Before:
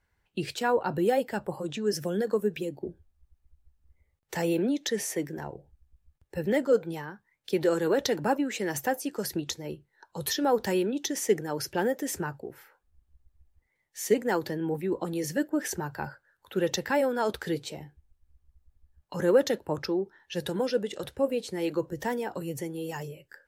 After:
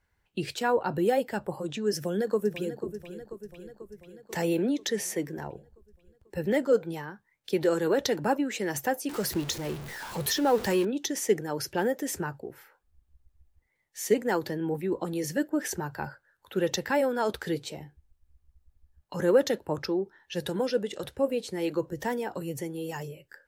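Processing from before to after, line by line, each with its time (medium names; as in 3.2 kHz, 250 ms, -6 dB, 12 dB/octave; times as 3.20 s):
1.96–2.87 s: echo throw 490 ms, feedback 65%, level -12 dB
9.09–10.85 s: jump at every zero crossing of -34 dBFS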